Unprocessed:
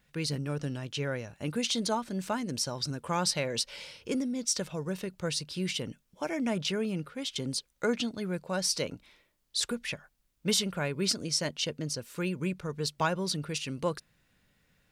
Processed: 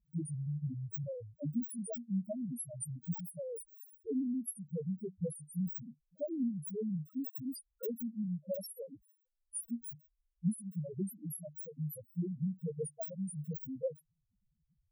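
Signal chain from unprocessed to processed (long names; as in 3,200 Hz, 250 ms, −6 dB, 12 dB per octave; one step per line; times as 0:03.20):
samples in bit-reversed order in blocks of 16 samples
high-shelf EQ 5,500 Hz +7 dB
downward compressor, threshold −28 dBFS, peak gain reduction 10 dB
transient designer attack +7 dB, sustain −3 dB
spectral peaks only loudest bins 1
level +3.5 dB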